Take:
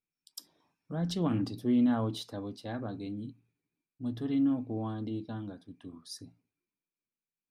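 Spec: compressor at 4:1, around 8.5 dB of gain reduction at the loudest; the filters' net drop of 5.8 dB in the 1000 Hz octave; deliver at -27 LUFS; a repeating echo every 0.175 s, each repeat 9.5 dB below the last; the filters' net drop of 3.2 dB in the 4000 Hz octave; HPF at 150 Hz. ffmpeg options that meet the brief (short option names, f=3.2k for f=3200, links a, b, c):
-af "highpass=150,equalizer=f=1k:t=o:g=-8,equalizer=f=4k:t=o:g=-3.5,acompressor=threshold=-34dB:ratio=4,aecho=1:1:175|350|525|700:0.335|0.111|0.0365|0.012,volume=13dB"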